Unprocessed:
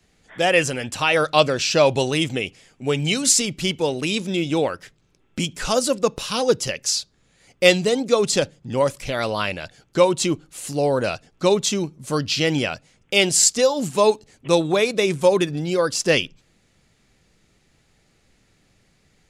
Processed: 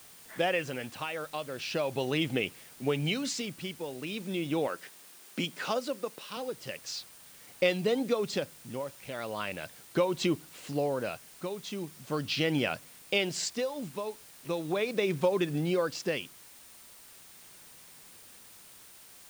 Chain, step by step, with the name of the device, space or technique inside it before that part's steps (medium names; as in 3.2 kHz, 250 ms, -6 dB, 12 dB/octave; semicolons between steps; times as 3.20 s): medium wave at night (band-pass 120–3600 Hz; compression, threshold -20 dBFS, peak gain reduction 11 dB; tremolo 0.39 Hz, depth 69%; whistle 9 kHz -57 dBFS; white noise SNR 20 dB); 4.67–6.37 s: high-pass 220 Hz 12 dB/octave; trim -3 dB